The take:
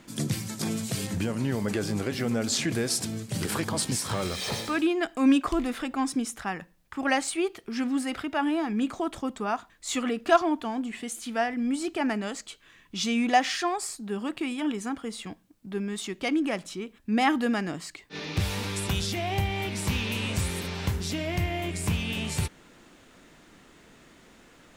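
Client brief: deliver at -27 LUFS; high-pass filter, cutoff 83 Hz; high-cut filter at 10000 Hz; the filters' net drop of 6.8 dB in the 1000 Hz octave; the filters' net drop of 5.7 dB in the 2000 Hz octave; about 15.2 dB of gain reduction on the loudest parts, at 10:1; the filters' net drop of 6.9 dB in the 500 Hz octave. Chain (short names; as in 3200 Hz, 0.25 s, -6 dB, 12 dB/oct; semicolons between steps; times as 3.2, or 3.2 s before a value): HPF 83 Hz; LPF 10000 Hz; bell 500 Hz -8.5 dB; bell 1000 Hz -4.5 dB; bell 2000 Hz -5.5 dB; compressor 10:1, threshold -34 dBFS; gain +11.5 dB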